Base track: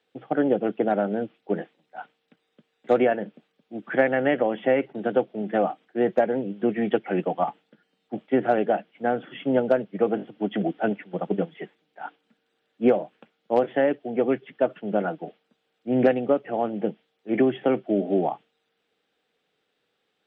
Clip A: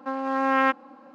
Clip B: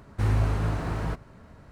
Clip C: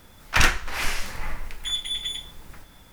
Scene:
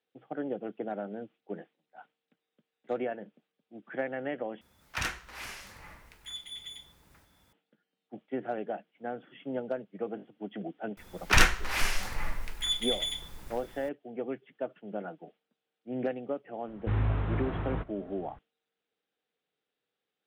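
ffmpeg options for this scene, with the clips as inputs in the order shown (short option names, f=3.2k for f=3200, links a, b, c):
-filter_complex "[3:a]asplit=2[a][b];[0:a]volume=-13dB[c];[a]highpass=56[d];[2:a]aresample=8000,aresample=44100[e];[c]asplit=2[f][g];[f]atrim=end=4.614[h];[d]atrim=end=2.92,asetpts=PTS-STARTPTS,volume=-13.5dB[i];[g]atrim=start=7.526[j];[b]atrim=end=2.92,asetpts=PTS-STARTPTS,volume=-2.5dB,afade=t=in:d=0.004:c=hsin,afade=t=out:st=2.916:d=0.004:c=hsin,adelay=10970[k];[e]atrim=end=1.71,asetpts=PTS-STARTPTS,volume=-4.5dB,afade=t=in:d=0.004:c=hsin,afade=t=out:st=1.706:d=0.004:c=hsin,adelay=735588S[l];[h][i]acrossfade=d=0.004:c1=hsin:c2=hsin[m];[m][j]acrossfade=d=0.004:c1=hsin:c2=hsin[n];[n][k][l]amix=inputs=3:normalize=0"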